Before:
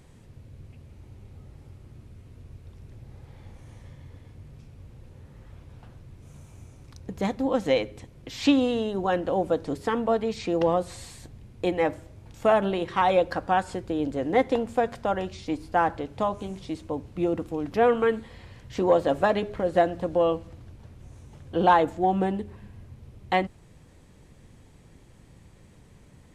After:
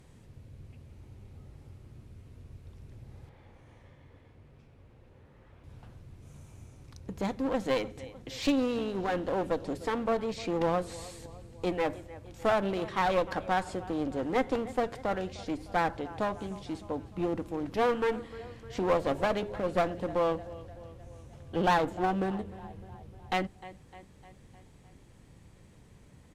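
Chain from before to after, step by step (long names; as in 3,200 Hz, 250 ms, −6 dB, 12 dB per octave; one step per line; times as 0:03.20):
0:03.29–0:05.64: bass and treble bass −8 dB, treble −11 dB
repeating echo 304 ms, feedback 57%, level −20 dB
asymmetric clip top −29.5 dBFS
level −3 dB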